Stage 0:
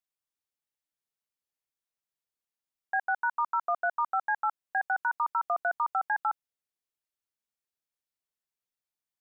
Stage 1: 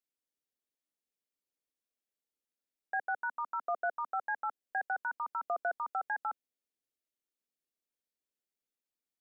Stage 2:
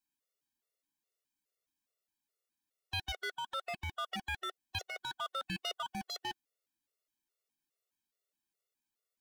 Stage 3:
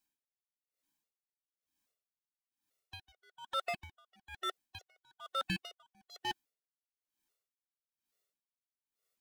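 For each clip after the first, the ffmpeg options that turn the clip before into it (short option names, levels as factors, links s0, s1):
-af "equalizer=f=125:t=o:w=1:g=-10,equalizer=f=250:t=o:w=1:g=9,equalizer=f=500:t=o:w=1:g=6,equalizer=f=1000:t=o:w=1:g=-7,volume=0.668"
-af "aeval=exprs='0.02*(abs(mod(val(0)/0.02+3,4)-2)-1)':c=same,afftfilt=real='re*gt(sin(2*PI*2.4*pts/sr)*(1-2*mod(floor(b*sr/1024/370),2)),0)':imag='im*gt(sin(2*PI*2.4*pts/sr)*(1-2*mod(floor(b*sr/1024/370),2)),0)':win_size=1024:overlap=0.75,volume=1.88"
-af "aeval=exprs='val(0)*pow(10,-35*(0.5-0.5*cos(2*PI*1.1*n/s))/20)':c=same,volume=1.88"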